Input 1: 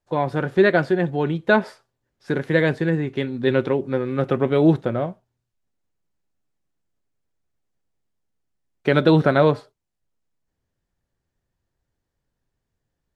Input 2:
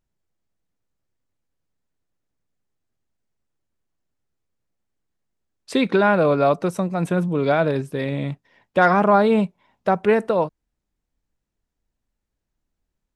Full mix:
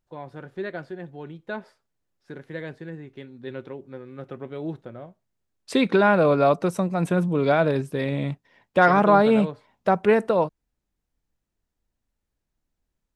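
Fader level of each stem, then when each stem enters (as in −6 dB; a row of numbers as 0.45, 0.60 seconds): −16.0, −1.0 decibels; 0.00, 0.00 seconds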